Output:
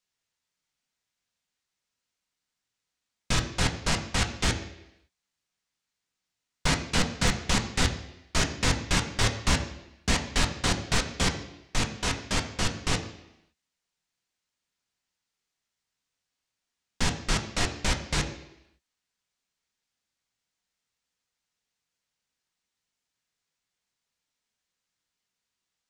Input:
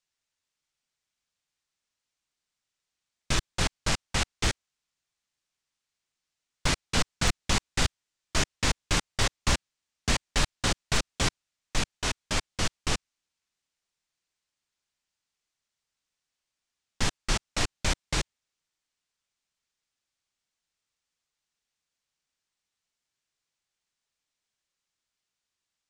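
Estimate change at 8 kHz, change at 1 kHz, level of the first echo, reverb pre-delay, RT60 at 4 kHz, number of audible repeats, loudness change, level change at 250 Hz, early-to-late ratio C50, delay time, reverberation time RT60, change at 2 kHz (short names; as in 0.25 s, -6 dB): +0.5 dB, +1.5 dB, none, 3 ms, 0.85 s, none, +1.5 dB, +4.0 dB, 10.0 dB, none, 0.85 s, +1.5 dB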